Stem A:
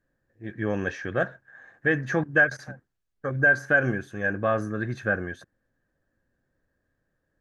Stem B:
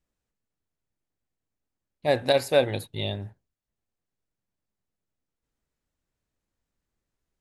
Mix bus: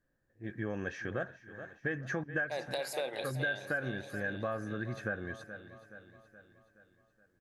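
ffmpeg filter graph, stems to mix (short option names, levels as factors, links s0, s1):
-filter_complex "[0:a]volume=0.631,asplit=2[s0][s1];[s1]volume=0.119[s2];[1:a]highpass=490,alimiter=limit=0.15:level=0:latency=1:release=35,adelay=450,volume=0.794,asplit=2[s3][s4];[s4]volume=0.299[s5];[s2][s5]amix=inputs=2:normalize=0,aecho=0:1:423|846|1269|1692|2115|2538|2961|3384:1|0.53|0.281|0.149|0.0789|0.0418|0.0222|0.0117[s6];[s0][s3][s6]amix=inputs=3:normalize=0,acompressor=threshold=0.02:ratio=3"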